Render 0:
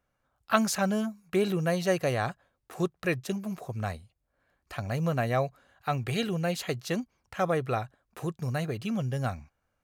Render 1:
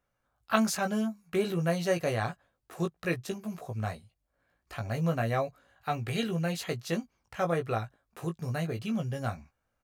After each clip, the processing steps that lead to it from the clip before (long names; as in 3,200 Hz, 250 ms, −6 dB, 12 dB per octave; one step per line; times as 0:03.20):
double-tracking delay 18 ms −5 dB
level −3 dB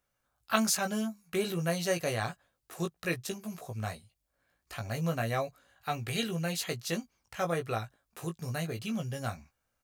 high-shelf EQ 2,900 Hz +9.5 dB
level −3 dB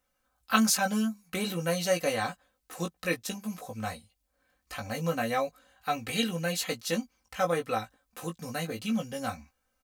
comb filter 3.9 ms, depth 78%
level +1 dB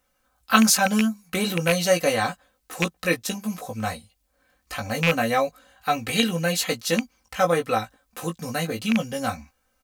loose part that buzzes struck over −30 dBFS, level −16 dBFS
level +7 dB